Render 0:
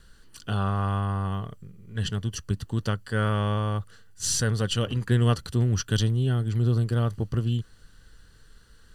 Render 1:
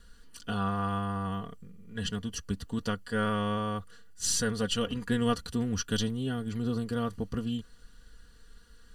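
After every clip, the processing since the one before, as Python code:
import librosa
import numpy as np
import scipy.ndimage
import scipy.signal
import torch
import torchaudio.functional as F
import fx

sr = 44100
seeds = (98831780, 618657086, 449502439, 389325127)

y = x + 0.69 * np.pad(x, (int(4.2 * sr / 1000.0), 0))[:len(x)]
y = y * librosa.db_to_amplitude(-4.0)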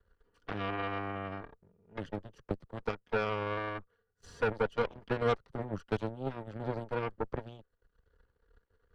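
y = fx.curve_eq(x, sr, hz=(110.0, 250.0, 380.0, 1400.0, 8300.0), db=(0, -10, 7, -2, -26))
y = fx.cheby_harmonics(y, sr, harmonics=(6, 7), levels_db=(-17, -17), full_scale_db=-15.0)
y = fx.band_squash(y, sr, depth_pct=40)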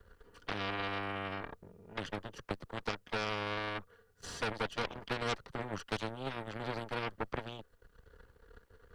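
y = fx.spectral_comp(x, sr, ratio=2.0)
y = y * librosa.db_to_amplitude(-3.0)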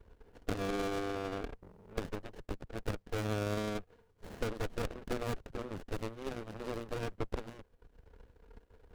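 y = fx.tracing_dist(x, sr, depth_ms=0.38)
y = fx.running_max(y, sr, window=33)
y = y * librosa.db_to_amplitude(1.0)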